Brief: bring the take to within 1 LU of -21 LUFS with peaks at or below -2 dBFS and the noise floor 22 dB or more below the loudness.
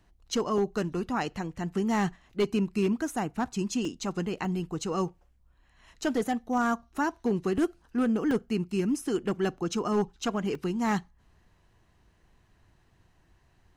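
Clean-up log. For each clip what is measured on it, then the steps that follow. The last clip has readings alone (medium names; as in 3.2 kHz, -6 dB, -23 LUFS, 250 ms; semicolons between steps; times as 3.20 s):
clipped samples 0.7%; clipping level -19.5 dBFS; dropouts 6; longest dropout 2.1 ms; loudness -30.0 LUFS; peak level -19.5 dBFS; loudness target -21.0 LUFS
-> clip repair -19.5 dBFS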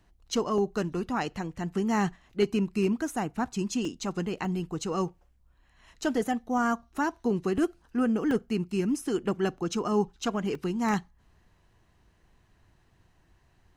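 clipped samples 0.0%; dropouts 6; longest dropout 2.1 ms
-> interpolate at 0.58/3.85/4.45/7.58/8.31/10.55 s, 2.1 ms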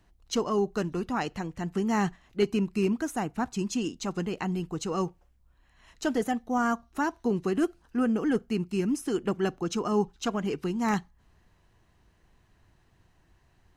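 dropouts 0; loudness -29.5 LUFS; peak level -12.5 dBFS; loudness target -21.0 LUFS
-> trim +8.5 dB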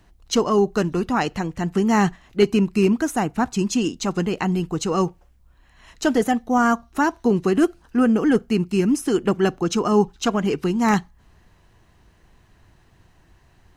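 loudness -21.0 LUFS; peak level -4.0 dBFS; noise floor -57 dBFS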